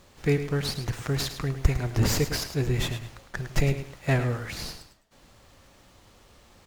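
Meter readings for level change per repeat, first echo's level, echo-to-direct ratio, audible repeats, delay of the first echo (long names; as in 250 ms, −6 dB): −11.5 dB, −10.5 dB, −10.0 dB, 2, 106 ms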